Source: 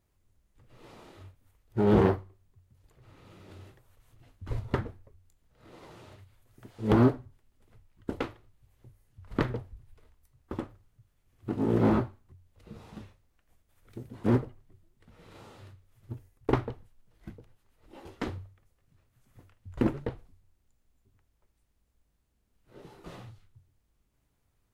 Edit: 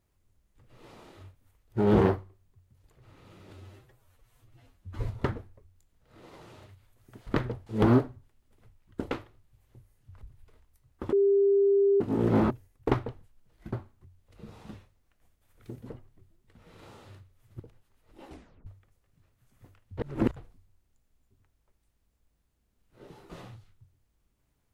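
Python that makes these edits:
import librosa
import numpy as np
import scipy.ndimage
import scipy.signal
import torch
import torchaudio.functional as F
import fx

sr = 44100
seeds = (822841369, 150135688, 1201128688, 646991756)

y = fx.edit(x, sr, fx.stretch_span(start_s=3.53, length_s=1.01, factor=1.5),
    fx.move(start_s=9.31, length_s=0.4, to_s=6.76),
    fx.bleep(start_s=10.62, length_s=0.88, hz=398.0, db=-19.0),
    fx.cut(start_s=14.17, length_s=0.25),
    fx.move(start_s=16.12, length_s=1.22, to_s=12.0),
    fx.tape_stop(start_s=18.02, length_s=0.39),
    fx.reverse_span(start_s=19.72, length_s=0.39), tone=tone)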